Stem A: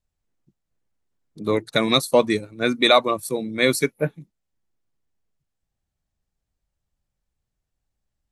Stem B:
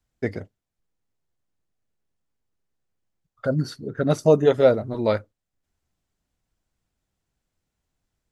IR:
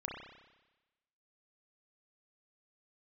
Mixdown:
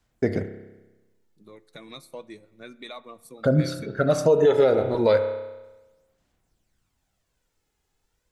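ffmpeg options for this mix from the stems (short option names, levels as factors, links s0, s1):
-filter_complex "[0:a]acompressor=threshold=0.0398:ratio=2,flanger=delay=2.3:depth=4.3:regen=63:speed=0.25:shape=triangular,volume=0.251,afade=t=in:st=1.28:d=0.75:silence=0.354813,asplit=3[s0][s1][s2];[s1]volume=0.158[s3];[1:a]lowshelf=f=170:g=-6,aphaser=in_gain=1:out_gain=1:delay=2.4:decay=0.45:speed=0.32:type=sinusoidal,volume=1.41,asplit=2[s4][s5];[s5]volume=0.447[s6];[s2]apad=whole_len=366561[s7];[s4][s7]sidechaincompress=threshold=0.00794:ratio=8:attack=5.6:release=418[s8];[2:a]atrim=start_sample=2205[s9];[s3][s6]amix=inputs=2:normalize=0[s10];[s10][s9]afir=irnorm=-1:irlink=0[s11];[s0][s8][s11]amix=inputs=3:normalize=0,alimiter=limit=0.316:level=0:latency=1:release=105"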